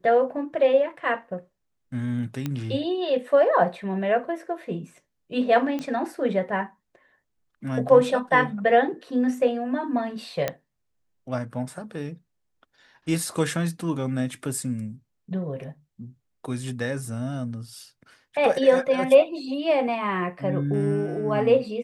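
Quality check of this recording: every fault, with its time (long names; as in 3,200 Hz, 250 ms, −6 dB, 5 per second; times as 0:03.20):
0:02.46: click −15 dBFS
0:05.79: click −18 dBFS
0:10.48: click −11 dBFS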